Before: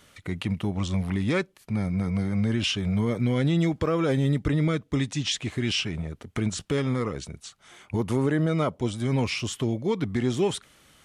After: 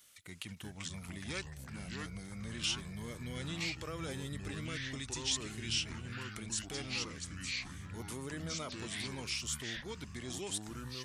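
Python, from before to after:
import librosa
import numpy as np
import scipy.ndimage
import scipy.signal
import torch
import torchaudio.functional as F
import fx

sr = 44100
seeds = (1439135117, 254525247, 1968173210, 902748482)

y = fx.echo_pitch(x, sr, ms=282, semitones=-4, count=3, db_per_echo=-3.0)
y = librosa.effects.preemphasis(y, coef=0.9, zi=[0.0])
y = y * 10.0 ** (-1.0 / 20.0)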